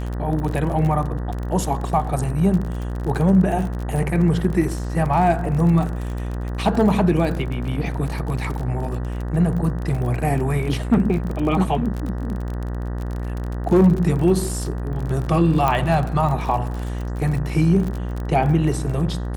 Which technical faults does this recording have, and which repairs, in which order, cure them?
buzz 60 Hz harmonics 32 -26 dBFS
crackle 35 per s -26 dBFS
15.68 s: pop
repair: de-click; de-hum 60 Hz, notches 32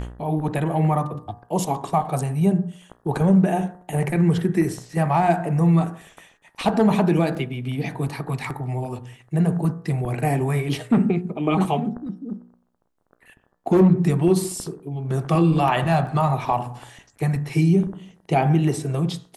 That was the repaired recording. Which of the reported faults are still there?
15.68 s: pop

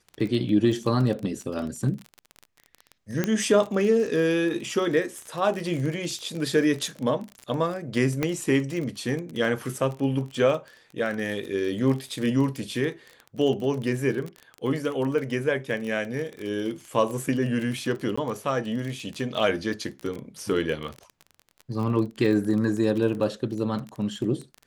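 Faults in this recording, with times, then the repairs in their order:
crackle 26 per s -30 dBFS
3.24 s: pop -10 dBFS
8.23 s: pop -11 dBFS
18.16–18.18 s: dropout 15 ms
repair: de-click; interpolate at 18.16 s, 15 ms

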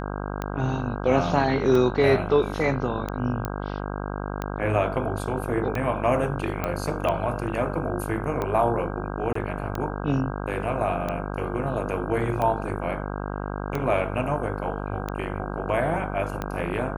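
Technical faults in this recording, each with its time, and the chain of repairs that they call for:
buzz 50 Hz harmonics 32 -31 dBFS
tick 45 rpm -15 dBFS
3.45 s: pop -14 dBFS
6.64 s: pop -13 dBFS
9.33–9.35 s: dropout 24 ms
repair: de-click; de-hum 50 Hz, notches 32; interpolate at 9.33 s, 24 ms

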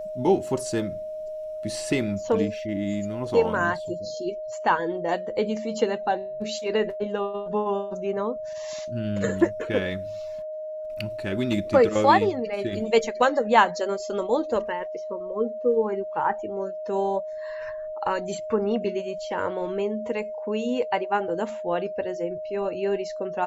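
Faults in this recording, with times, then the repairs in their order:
whine 620 Hz -31 dBFS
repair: band-stop 620 Hz, Q 30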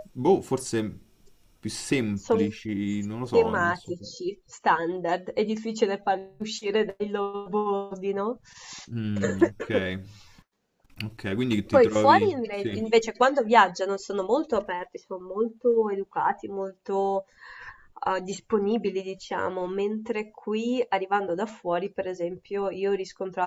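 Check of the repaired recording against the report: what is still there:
nothing left

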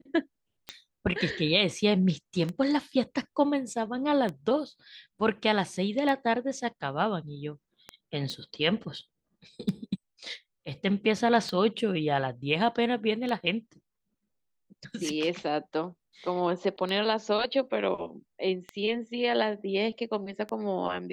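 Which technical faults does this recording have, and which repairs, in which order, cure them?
tick 33 1/3 rpm -20 dBFS
8.30 s: pop -22 dBFS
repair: de-click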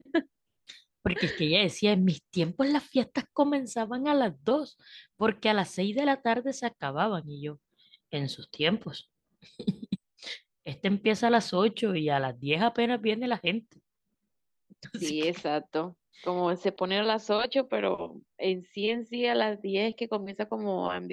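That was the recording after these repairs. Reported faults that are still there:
nothing left

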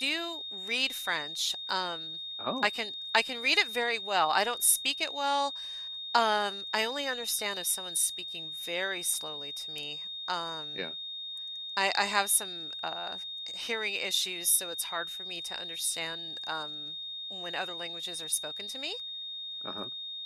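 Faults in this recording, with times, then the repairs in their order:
whine 3.7 kHz -37 dBFS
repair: band-stop 3.7 kHz, Q 30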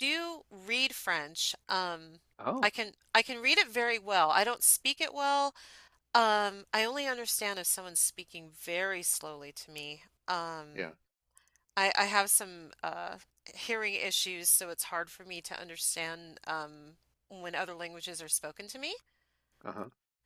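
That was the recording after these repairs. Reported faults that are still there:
nothing left

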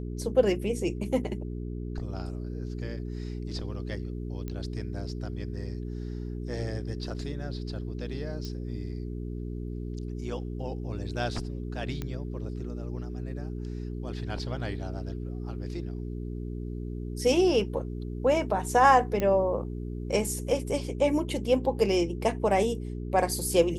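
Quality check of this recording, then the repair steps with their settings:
hum 60 Hz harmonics 7 -35 dBFS
4.48 s: pop -23 dBFS
8.45 s: pop -24 dBFS
12.02 s: pop -20 dBFS
19.20 s: pop -16 dBFS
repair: de-click; de-hum 60 Hz, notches 7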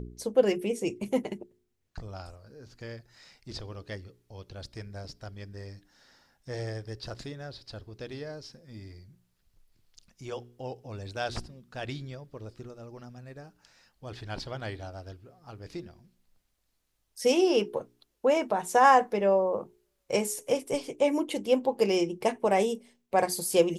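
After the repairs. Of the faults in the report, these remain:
nothing left

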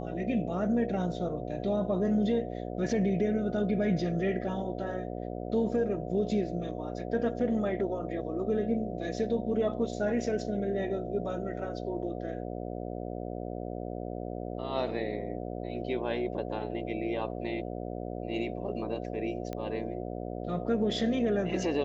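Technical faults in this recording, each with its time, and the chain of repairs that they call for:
buzz 60 Hz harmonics 12 -37 dBFS
19.53 s: pop -23 dBFS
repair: de-click; de-hum 60 Hz, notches 12

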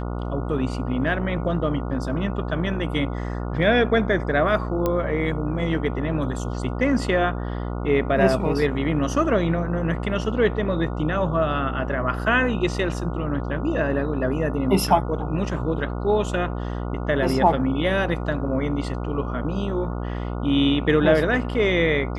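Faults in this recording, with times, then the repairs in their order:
buzz 60 Hz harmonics 24 -28 dBFS
4.86 s: pop -10 dBFS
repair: de-click; de-hum 60 Hz, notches 24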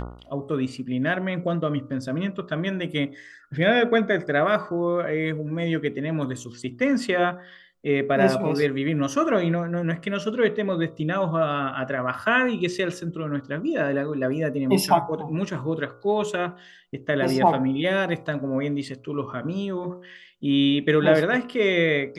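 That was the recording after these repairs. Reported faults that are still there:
nothing left

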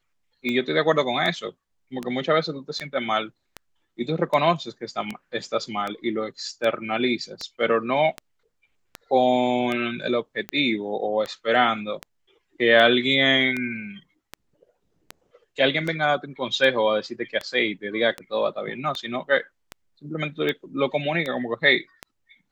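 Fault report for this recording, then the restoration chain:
tick 78 rpm -15 dBFS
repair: de-click

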